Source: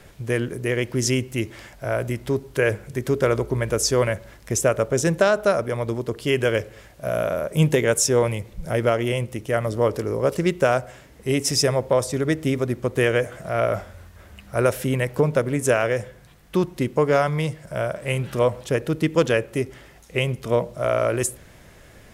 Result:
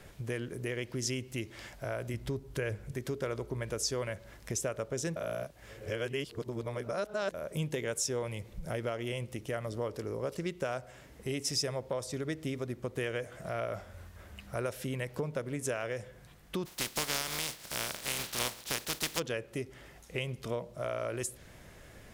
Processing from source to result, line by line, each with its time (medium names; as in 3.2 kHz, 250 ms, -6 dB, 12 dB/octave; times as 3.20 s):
2.14–2.93 s: bass shelf 130 Hz +11.5 dB
5.16–7.34 s: reverse
16.65–19.18 s: spectral contrast reduction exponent 0.27
whole clip: compression 2.5:1, threshold -32 dBFS; dynamic bell 4.3 kHz, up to +5 dB, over -51 dBFS, Q 0.95; trim -5 dB